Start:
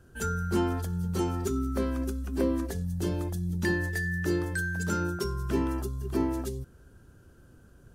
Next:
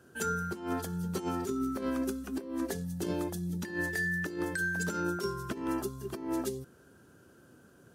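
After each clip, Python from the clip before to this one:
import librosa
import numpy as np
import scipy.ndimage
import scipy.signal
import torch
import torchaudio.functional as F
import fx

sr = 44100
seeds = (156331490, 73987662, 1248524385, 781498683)

y = scipy.signal.sosfilt(scipy.signal.butter(2, 190.0, 'highpass', fs=sr, output='sos'), x)
y = fx.over_compress(y, sr, threshold_db=-32.0, ratio=-0.5)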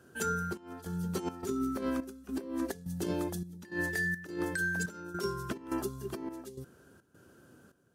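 y = fx.step_gate(x, sr, bpm=105, pattern='xxxx..xxx.', floor_db=-12.0, edge_ms=4.5)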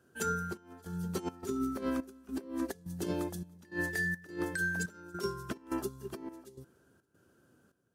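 y = fx.echo_feedback(x, sr, ms=286, feedback_pct=39, wet_db=-23.5)
y = fx.upward_expand(y, sr, threshold_db=-46.0, expansion=1.5)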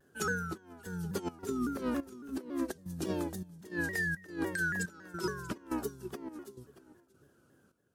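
y = x + 10.0 ** (-16.0 / 20.0) * np.pad(x, (int(636 * sr / 1000.0), 0))[:len(x)]
y = fx.vibrato_shape(y, sr, shape='saw_down', rate_hz=3.6, depth_cents=160.0)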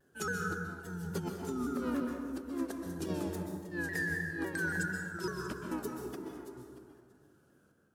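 y = fx.rev_plate(x, sr, seeds[0], rt60_s=1.5, hf_ratio=0.5, predelay_ms=115, drr_db=2.0)
y = F.gain(torch.from_numpy(y), -3.0).numpy()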